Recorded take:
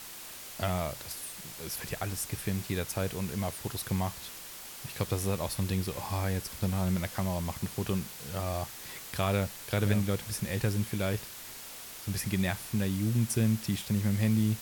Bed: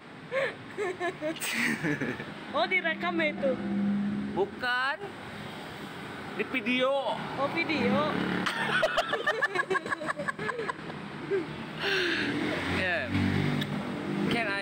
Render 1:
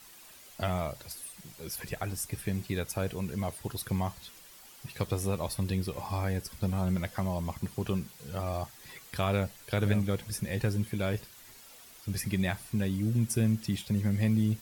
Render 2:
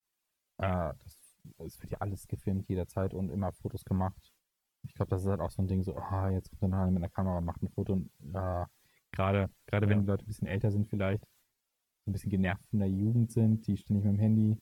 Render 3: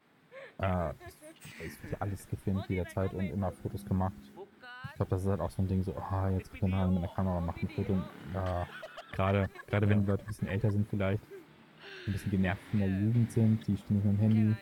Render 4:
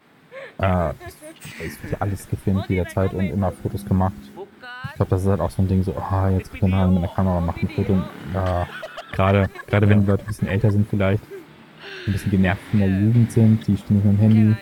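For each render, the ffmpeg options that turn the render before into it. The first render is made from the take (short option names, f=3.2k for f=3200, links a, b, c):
-af "afftdn=nr=10:nf=-45"
-af "afwtdn=0.0126,agate=range=-33dB:threshold=-58dB:ratio=3:detection=peak"
-filter_complex "[1:a]volume=-19.5dB[a];[0:a][a]amix=inputs=2:normalize=0"
-af "volume=12dB"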